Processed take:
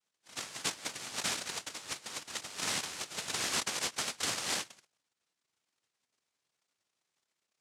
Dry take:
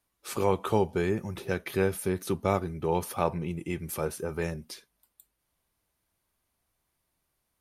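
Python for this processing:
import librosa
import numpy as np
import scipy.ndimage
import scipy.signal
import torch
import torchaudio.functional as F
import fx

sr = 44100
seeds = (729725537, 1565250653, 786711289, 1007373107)

y = scipy.signal.sosfilt(scipy.signal.butter(2, 2000.0, 'lowpass', fs=sr, output='sos'), x)
y = fx.env_lowpass(y, sr, base_hz=320.0, full_db=-24.0)
y = fx.peak_eq(y, sr, hz=730.0, db=-9.0, octaves=1.2)
y = fx.over_compress(y, sr, threshold_db=-35.0, ratio=-0.5)
y = fx.noise_vocoder(y, sr, seeds[0], bands=1)
y = fx.end_taper(y, sr, db_per_s=540.0)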